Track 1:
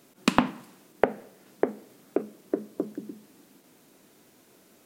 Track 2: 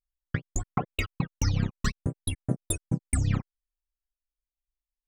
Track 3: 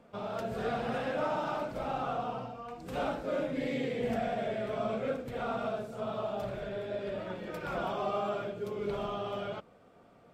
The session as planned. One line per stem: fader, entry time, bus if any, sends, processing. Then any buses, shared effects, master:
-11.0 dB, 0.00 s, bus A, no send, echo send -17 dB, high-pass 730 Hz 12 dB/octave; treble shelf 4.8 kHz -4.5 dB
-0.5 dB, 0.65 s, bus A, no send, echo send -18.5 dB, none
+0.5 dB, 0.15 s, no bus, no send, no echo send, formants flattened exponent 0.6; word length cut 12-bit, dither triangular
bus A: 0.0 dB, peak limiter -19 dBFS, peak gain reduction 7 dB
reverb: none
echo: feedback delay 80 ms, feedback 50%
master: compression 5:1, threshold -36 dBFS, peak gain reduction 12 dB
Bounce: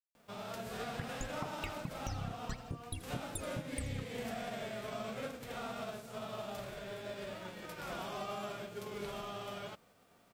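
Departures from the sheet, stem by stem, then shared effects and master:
stem 1: muted; stem 2 -0.5 dB -> -9.5 dB; stem 3 +0.5 dB -> -7.0 dB

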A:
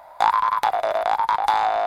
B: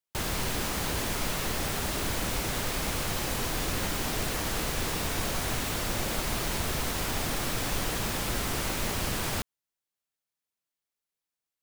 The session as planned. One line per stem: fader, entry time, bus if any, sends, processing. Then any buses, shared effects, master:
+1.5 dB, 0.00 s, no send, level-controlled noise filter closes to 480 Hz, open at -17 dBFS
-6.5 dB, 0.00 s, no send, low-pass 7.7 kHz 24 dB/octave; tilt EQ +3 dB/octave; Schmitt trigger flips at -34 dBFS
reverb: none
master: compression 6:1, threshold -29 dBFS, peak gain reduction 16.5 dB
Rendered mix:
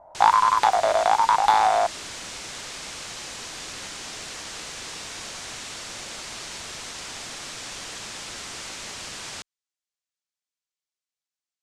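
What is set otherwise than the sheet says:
stem B: missing Schmitt trigger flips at -34 dBFS; master: missing compression 6:1, threshold -29 dBFS, peak gain reduction 16.5 dB

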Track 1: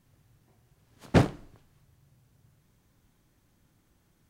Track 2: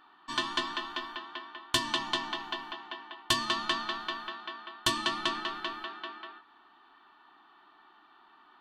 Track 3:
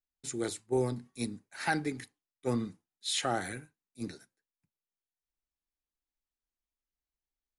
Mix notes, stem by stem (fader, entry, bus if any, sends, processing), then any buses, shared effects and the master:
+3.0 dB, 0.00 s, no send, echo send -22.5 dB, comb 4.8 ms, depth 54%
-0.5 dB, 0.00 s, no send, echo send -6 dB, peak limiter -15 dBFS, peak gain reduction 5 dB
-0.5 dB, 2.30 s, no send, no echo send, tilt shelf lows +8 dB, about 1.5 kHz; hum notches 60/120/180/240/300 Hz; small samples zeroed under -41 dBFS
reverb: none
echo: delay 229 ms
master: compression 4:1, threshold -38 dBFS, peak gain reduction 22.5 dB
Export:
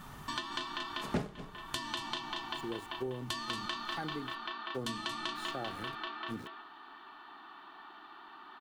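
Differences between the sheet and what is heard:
stem 1 +3.0 dB -> +14.0 dB; stem 2 -0.5 dB -> +6.5 dB

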